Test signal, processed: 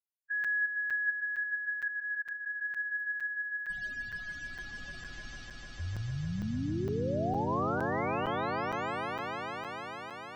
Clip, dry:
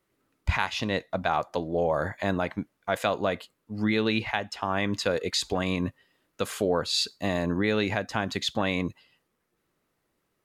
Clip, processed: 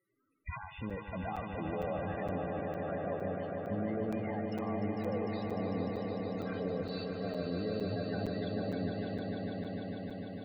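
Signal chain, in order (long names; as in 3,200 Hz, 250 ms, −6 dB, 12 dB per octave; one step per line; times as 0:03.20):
tilt shelving filter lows −4.5 dB, about 1,300 Hz
notch filter 920 Hz, Q 16
treble cut that deepens with the level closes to 1,200 Hz, closed at −27 dBFS
high-shelf EQ 6,800 Hz +6.5 dB
harmonic and percussive parts rebalanced percussive −11 dB
brickwall limiter −31 dBFS
spectral peaks only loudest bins 16
echo that builds up and dies away 150 ms, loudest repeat 5, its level −6 dB
regular buffer underruns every 0.46 s, samples 256, zero, from 0:00.44
level +2 dB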